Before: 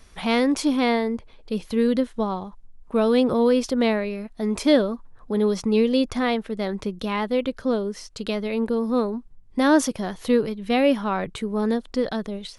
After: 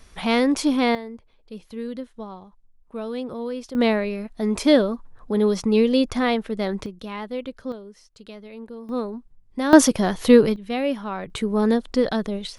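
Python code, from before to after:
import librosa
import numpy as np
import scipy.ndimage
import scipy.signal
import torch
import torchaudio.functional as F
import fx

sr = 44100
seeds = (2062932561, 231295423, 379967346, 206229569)

y = fx.gain(x, sr, db=fx.steps((0.0, 1.0), (0.95, -11.0), (3.75, 1.5), (6.86, -7.0), (7.72, -14.0), (8.89, -4.5), (9.73, 7.0), (10.56, -5.0), (11.3, 3.5)))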